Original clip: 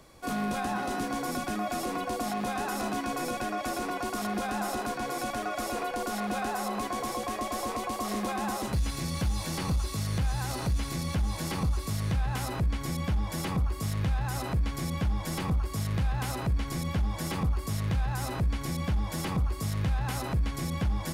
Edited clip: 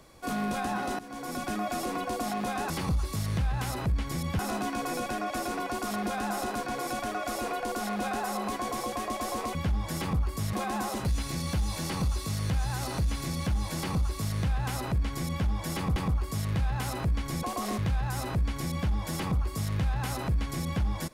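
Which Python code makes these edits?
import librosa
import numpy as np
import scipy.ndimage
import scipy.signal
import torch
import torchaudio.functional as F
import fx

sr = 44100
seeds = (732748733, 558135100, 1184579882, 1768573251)

y = fx.edit(x, sr, fx.fade_in_from(start_s=0.99, length_s=0.5, floor_db=-17.5),
    fx.swap(start_s=7.86, length_s=0.35, other_s=16.85, other_length_s=0.98),
    fx.duplicate(start_s=11.44, length_s=1.69, to_s=2.7),
    fx.cut(start_s=13.64, length_s=1.74), tone=tone)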